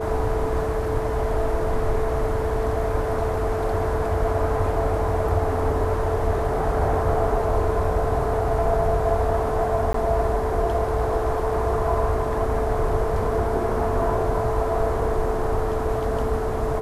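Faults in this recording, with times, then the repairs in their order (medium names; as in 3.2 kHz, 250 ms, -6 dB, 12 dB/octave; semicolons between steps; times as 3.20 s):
whine 440 Hz -26 dBFS
9.93–9.94 s: dropout 13 ms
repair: band-stop 440 Hz, Q 30; interpolate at 9.93 s, 13 ms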